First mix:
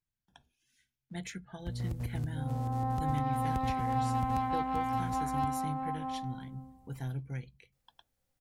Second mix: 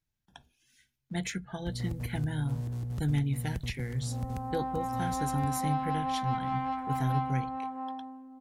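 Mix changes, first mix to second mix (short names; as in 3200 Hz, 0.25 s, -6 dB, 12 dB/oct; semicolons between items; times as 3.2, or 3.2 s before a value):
speech +7.0 dB; second sound: entry +1.75 s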